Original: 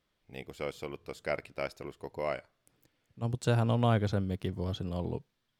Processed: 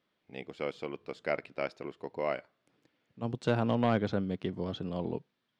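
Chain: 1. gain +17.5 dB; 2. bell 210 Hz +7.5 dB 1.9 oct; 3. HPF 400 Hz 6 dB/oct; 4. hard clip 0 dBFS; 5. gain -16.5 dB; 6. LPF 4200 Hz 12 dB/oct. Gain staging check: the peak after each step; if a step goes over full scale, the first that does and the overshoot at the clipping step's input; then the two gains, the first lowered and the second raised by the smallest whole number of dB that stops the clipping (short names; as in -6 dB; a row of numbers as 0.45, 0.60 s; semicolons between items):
+2.5, +6.5, +4.5, 0.0, -16.5, -16.0 dBFS; step 1, 4.5 dB; step 1 +12.5 dB, step 5 -11.5 dB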